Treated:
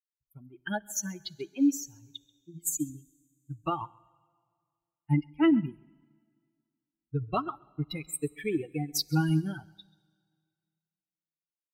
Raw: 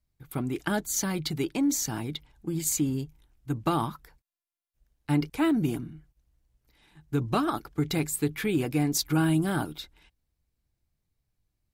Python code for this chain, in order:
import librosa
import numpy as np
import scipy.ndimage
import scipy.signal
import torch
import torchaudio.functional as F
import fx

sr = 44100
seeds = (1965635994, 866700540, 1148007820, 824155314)

p1 = fx.bin_expand(x, sr, power=3.0)
p2 = p1 + fx.echo_single(p1, sr, ms=134, db=-20.0, dry=0)
p3 = fx.rev_plate(p2, sr, seeds[0], rt60_s=2.0, hf_ratio=0.95, predelay_ms=0, drr_db=18.5)
p4 = fx.upward_expand(p3, sr, threshold_db=-46.0, expansion=1.5)
y = p4 * 10.0 ** (5.5 / 20.0)